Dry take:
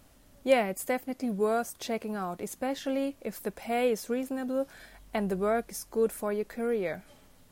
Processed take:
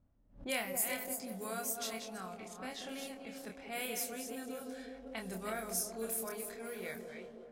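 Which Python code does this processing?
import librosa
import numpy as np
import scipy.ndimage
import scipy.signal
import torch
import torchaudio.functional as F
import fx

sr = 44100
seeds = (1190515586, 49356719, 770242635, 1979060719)

p1 = fx.reverse_delay(x, sr, ms=242, wet_db=-7)
p2 = fx.high_shelf(p1, sr, hz=8200.0, db=11.0)
p3 = p2 + fx.echo_wet_bandpass(p2, sr, ms=189, feedback_pct=74, hz=410.0, wet_db=-5.5, dry=0)
p4 = fx.env_lowpass(p3, sr, base_hz=500.0, full_db=-24.0)
p5 = fx.tone_stack(p4, sr, knobs='5-5-5')
p6 = fx.doubler(p5, sr, ms=27.0, db=-4.5)
p7 = fx.pre_swell(p6, sr, db_per_s=150.0)
y = p7 * 10.0 ** (2.5 / 20.0)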